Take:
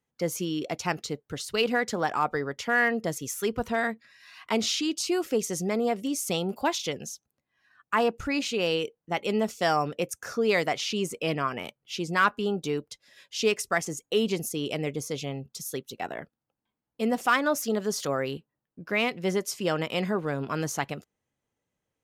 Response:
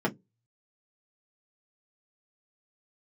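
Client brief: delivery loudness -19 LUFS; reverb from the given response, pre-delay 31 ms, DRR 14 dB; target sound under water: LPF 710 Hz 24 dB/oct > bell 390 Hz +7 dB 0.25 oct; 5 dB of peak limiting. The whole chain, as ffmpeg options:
-filter_complex "[0:a]alimiter=limit=-16.5dB:level=0:latency=1,asplit=2[a][b];[1:a]atrim=start_sample=2205,adelay=31[c];[b][c]afir=irnorm=-1:irlink=0,volume=-24dB[d];[a][d]amix=inputs=2:normalize=0,lowpass=f=710:w=0.5412,lowpass=f=710:w=1.3066,equalizer=f=390:t=o:w=0.25:g=7,volume=10dB"

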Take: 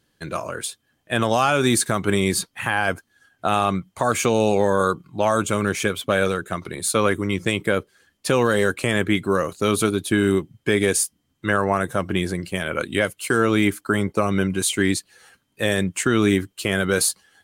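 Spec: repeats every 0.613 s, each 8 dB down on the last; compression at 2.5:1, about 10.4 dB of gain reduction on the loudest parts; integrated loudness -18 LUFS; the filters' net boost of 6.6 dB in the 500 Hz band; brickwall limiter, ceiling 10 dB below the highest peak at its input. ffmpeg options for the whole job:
-af "equalizer=f=500:t=o:g=8,acompressor=threshold=-26dB:ratio=2.5,alimiter=limit=-18.5dB:level=0:latency=1,aecho=1:1:613|1226|1839|2452|3065:0.398|0.159|0.0637|0.0255|0.0102,volume=11.5dB"

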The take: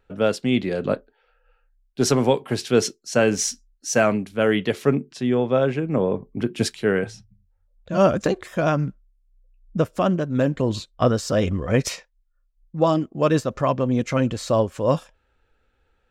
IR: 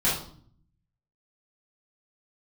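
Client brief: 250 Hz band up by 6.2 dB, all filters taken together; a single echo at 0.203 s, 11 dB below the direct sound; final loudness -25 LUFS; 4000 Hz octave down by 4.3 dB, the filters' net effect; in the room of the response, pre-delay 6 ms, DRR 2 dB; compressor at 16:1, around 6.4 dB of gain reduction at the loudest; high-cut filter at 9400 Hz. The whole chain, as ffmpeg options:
-filter_complex "[0:a]lowpass=9.4k,equalizer=f=250:t=o:g=7.5,equalizer=f=4k:t=o:g=-6,acompressor=threshold=-15dB:ratio=16,aecho=1:1:203:0.282,asplit=2[a][b];[1:a]atrim=start_sample=2205,adelay=6[c];[b][c]afir=irnorm=-1:irlink=0,volume=-14.5dB[d];[a][d]amix=inputs=2:normalize=0,volume=-6.5dB"

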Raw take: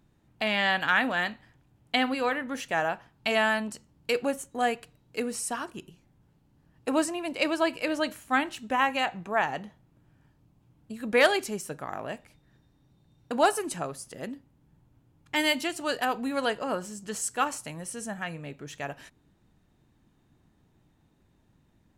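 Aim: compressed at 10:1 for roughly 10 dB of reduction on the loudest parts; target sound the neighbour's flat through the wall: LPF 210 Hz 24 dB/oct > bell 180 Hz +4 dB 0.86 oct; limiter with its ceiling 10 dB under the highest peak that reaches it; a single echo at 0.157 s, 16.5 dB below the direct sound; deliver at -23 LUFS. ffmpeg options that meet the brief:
-af "acompressor=threshold=-26dB:ratio=10,alimiter=level_in=0.5dB:limit=-24dB:level=0:latency=1,volume=-0.5dB,lowpass=f=210:w=0.5412,lowpass=f=210:w=1.3066,equalizer=f=180:t=o:w=0.86:g=4,aecho=1:1:157:0.15,volume=22.5dB"

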